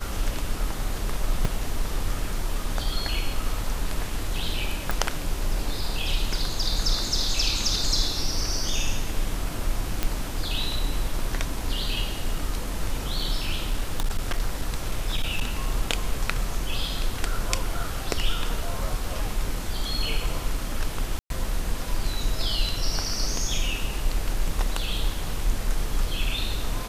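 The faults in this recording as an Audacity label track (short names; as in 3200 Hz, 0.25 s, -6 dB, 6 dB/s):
1.450000	1.450000	gap 3.4 ms
4.910000	4.910000	pop
10.030000	10.030000	pop -9 dBFS
13.480000	15.660000	clipped -18.5 dBFS
21.190000	21.300000	gap 0.112 s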